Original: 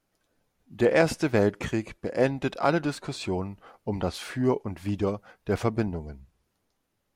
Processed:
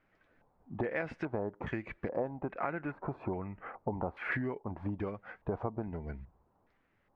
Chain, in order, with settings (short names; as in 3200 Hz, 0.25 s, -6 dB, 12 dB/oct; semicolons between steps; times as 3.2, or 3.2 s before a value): 2.31–4.32 band shelf 5300 Hz -13 dB; compressor 12:1, threshold -36 dBFS, peak gain reduction 20.5 dB; LFO low-pass square 1.2 Hz 920–2000 Hz; gain +2.5 dB